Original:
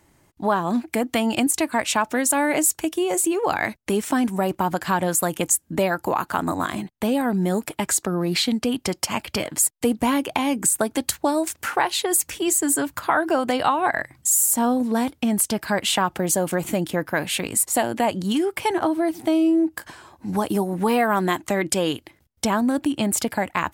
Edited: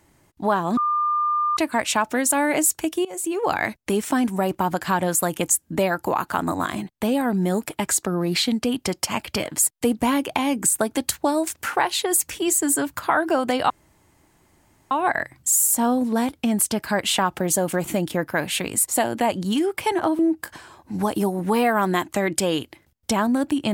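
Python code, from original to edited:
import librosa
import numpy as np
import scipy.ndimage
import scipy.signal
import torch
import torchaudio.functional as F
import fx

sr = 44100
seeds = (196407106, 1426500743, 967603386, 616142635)

y = fx.edit(x, sr, fx.bleep(start_s=0.77, length_s=0.8, hz=1200.0, db=-18.5),
    fx.fade_in_from(start_s=3.05, length_s=0.41, floor_db=-20.0),
    fx.insert_room_tone(at_s=13.7, length_s=1.21),
    fx.cut(start_s=18.98, length_s=0.55), tone=tone)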